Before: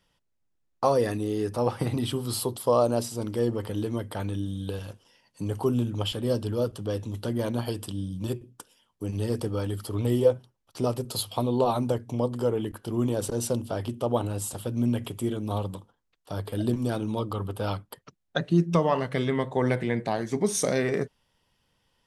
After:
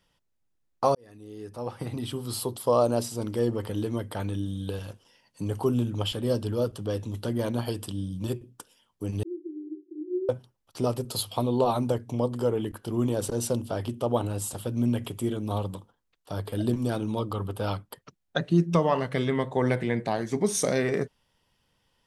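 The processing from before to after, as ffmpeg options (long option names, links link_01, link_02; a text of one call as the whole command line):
ffmpeg -i in.wav -filter_complex "[0:a]asettb=1/sr,asplit=3[link_01][link_02][link_03];[link_01]atrim=end=9.234[link_04];[link_02]atrim=start=9.23:end=10.29,asetpts=PTS-STARTPTS,afade=type=in:duration=0.004:curve=qsin,afade=type=out:start_time=1.056:duration=0.004:curve=qsin,asuperpass=centerf=340:order=20:qfactor=3.7[link_05];[link_03]atrim=start=10.286[link_06];[link_04][link_05]acrossfade=duration=0.004:curve1=hsin:curve2=qsin[link_07];[link_07][link_06]acrossfade=duration=0.004:curve1=qsin:curve2=hsin,asplit=2[link_08][link_09];[link_08]atrim=end=0.95,asetpts=PTS-STARTPTS,afade=type=out:start_time=0.946:duration=0.004:curve=hsin[link_10];[link_09]atrim=start=0.95,asetpts=PTS-STARTPTS,afade=type=in:duration=1.87[link_11];[link_10][link_11]concat=n=2:v=0:a=1" out.wav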